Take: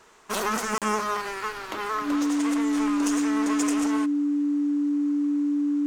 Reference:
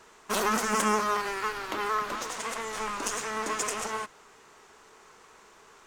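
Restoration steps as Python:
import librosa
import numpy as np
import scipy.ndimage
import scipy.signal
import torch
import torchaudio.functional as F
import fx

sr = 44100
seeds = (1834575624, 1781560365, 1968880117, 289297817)

y = fx.notch(x, sr, hz=290.0, q=30.0)
y = fx.fix_interpolate(y, sr, at_s=(0.78,), length_ms=37.0)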